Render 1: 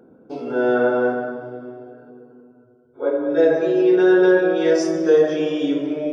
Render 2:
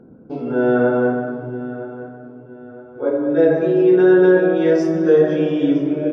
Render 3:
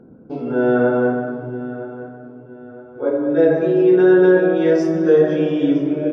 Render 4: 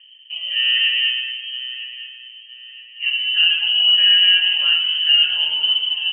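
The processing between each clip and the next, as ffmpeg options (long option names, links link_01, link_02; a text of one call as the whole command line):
ffmpeg -i in.wav -filter_complex "[0:a]bass=frequency=250:gain=12,treble=frequency=4000:gain=-12,asplit=2[link_01][link_02];[link_02]adelay=964,lowpass=frequency=3500:poles=1,volume=-15dB,asplit=2[link_03][link_04];[link_04]adelay=964,lowpass=frequency=3500:poles=1,volume=0.41,asplit=2[link_05][link_06];[link_06]adelay=964,lowpass=frequency=3500:poles=1,volume=0.41,asplit=2[link_07][link_08];[link_08]adelay=964,lowpass=frequency=3500:poles=1,volume=0.41[link_09];[link_01][link_03][link_05][link_07][link_09]amix=inputs=5:normalize=0" out.wav
ffmpeg -i in.wav -af anull out.wav
ffmpeg -i in.wav -af "lowpass=frequency=2800:width_type=q:width=0.5098,lowpass=frequency=2800:width_type=q:width=0.6013,lowpass=frequency=2800:width_type=q:width=0.9,lowpass=frequency=2800:width_type=q:width=2.563,afreqshift=-3300,volume=-2dB" out.wav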